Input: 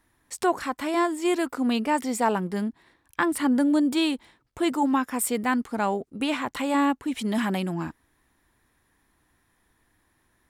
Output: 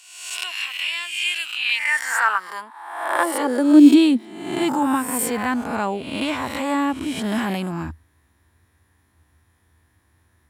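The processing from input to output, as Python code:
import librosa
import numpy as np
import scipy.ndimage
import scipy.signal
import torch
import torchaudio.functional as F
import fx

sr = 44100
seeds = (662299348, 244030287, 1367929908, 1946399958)

y = fx.spec_swells(x, sr, rise_s=0.89)
y = fx.filter_sweep_highpass(y, sr, from_hz=2700.0, to_hz=81.0, start_s=1.57, end_s=5.25, q=7.5)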